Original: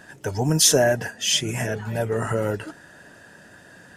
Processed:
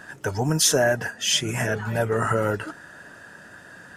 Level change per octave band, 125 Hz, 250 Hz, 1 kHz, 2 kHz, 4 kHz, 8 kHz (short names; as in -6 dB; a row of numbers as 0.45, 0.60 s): -1.0, -1.0, +2.5, +2.5, -1.5, -2.5 dB